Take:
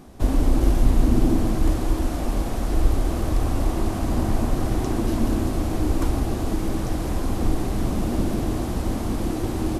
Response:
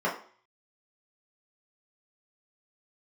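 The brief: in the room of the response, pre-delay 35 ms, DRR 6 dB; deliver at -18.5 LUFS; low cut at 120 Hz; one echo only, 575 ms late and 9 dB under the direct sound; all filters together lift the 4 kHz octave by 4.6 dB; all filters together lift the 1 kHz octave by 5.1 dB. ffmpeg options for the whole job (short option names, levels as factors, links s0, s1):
-filter_complex "[0:a]highpass=120,equalizer=f=1000:t=o:g=6.5,equalizer=f=4000:t=o:g=5.5,aecho=1:1:575:0.355,asplit=2[s0][s1];[1:a]atrim=start_sample=2205,adelay=35[s2];[s1][s2]afir=irnorm=-1:irlink=0,volume=0.126[s3];[s0][s3]amix=inputs=2:normalize=0,volume=2.11"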